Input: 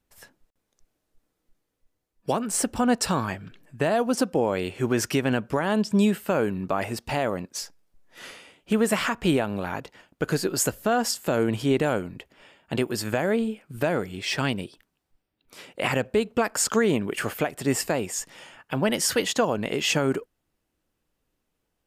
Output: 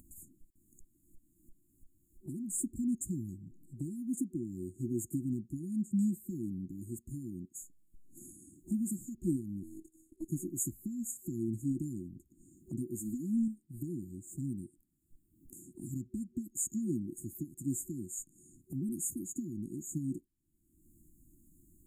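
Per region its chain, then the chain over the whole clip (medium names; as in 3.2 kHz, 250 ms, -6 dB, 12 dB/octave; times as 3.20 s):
9.63–10.28 s: CVSD coder 64 kbps + robot voice 320 Hz
12.99–13.48 s: comb 4 ms, depth 96% + loudspeaker Doppler distortion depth 0.13 ms
whole clip: FFT band-reject 370–6600 Hz; upward compressor, threshold -32 dBFS; trim -9 dB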